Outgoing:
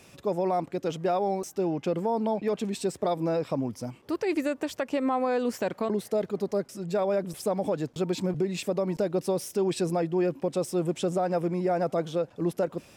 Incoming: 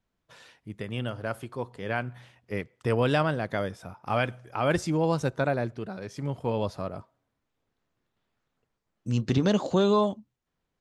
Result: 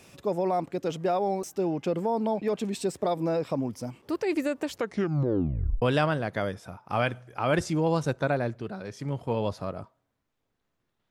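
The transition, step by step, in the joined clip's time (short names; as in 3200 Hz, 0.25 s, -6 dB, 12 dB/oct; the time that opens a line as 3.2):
outgoing
4.65 tape stop 1.17 s
5.82 switch to incoming from 2.99 s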